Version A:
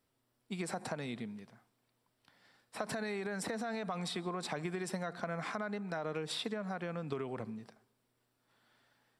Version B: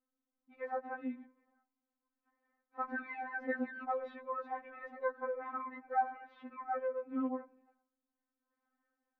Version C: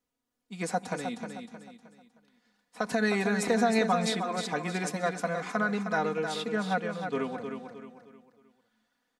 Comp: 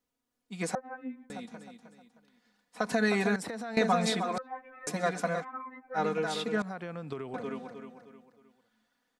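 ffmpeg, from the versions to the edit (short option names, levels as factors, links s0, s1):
-filter_complex "[1:a]asplit=3[s0][s1][s2];[0:a]asplit=2[s3][s4];[2:a]asplit=6[s5][s6][s7][s8][s9][s10];[s5]atrim=end=0.752[s11];[s0]atrim=start=0.748:end=1.302[s12];[s6]atrim=start=1.298:end=3.362[s13];[s3]atrim=start=3.358:end=3.772[s14];[s7]atrim=start=3.768:end=4.382[s15];[s1]atrim=start=4.378:end=4.872[s16];[s8]atrim=start=4.868:end=5.45[s17];[s2]atrim=start=5.39:end=6[s18];[s9]atrim=start=5.94:end=6.622[s19];[s4]atrim=start=6.618:end=7.342[s20];[s10]atrim=start=7.338[s21];[s11][s12]acrossfade=d=0.004:c1=hsin:c2=hsin[s22];[s22][s13]acrossfade=d=0.004:c1=hsin:c2=hsin[s23];[s23][s14]acrossfade=d=0.004:c1=hsin:c2=hsin[s24];[s24][s15]acrossfade=d=0.004:c1=hsin:c2=hsin[s25];[s25][s16]acrossfade=d=0.004:c1=hsin:c2=hsin[s26];[s26][s17]acrossfade=d=0.004:c1=hsin:c2=hsin[s27];[s27][s18]acrossfade=d=0.06:c1=tri:c2=tri[s28];[s28][s19]acrossfade=d=0.06:c1=tri:c2=tri[s29];[s29][s20]acrossfade=d=0.004:c1=hsin:c2=hsin[s30];[s30][s21]acrossfade=d=0.004:c1=hsin:c2=hsin"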